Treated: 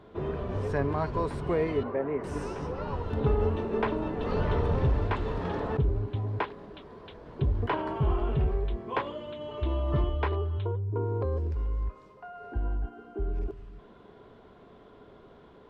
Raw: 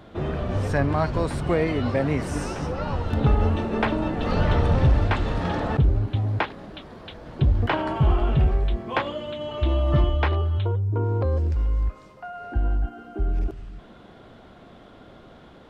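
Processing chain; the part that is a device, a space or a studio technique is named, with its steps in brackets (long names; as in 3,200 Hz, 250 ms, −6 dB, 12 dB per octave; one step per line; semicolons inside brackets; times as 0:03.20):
inside a helmet (high-shelf EQ 4,800 Hz −8 dB; hollow resonant body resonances 420/1,000 Hz, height 11 dB, ringing for 55 ms)
0:01.83–0:02.24: three-way crossover with the lows and the highs turned down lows −12 dB, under 240 Hz, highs −24 dB, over 2,200 Hz
level −7.5 dB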